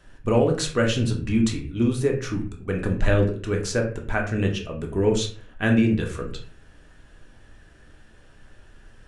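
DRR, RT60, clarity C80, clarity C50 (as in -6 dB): 1.0 dB, 0.45 s, 13.0 dB, 8.5 dB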